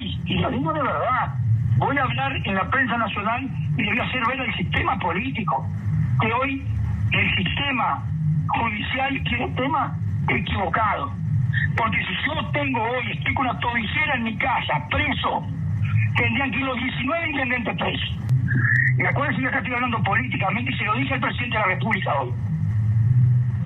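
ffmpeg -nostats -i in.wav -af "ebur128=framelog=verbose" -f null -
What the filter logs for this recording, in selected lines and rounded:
Integrated loudness:
  I:         -22.1 LUFS
  Threshold: -32.1 LUFS
Loudness range:
  LRA:         1.7 LU
  Threshold: -42.2 LUFS
  LRA low:   -22.9 LUFS
  LRA high:  -21.2 LUFS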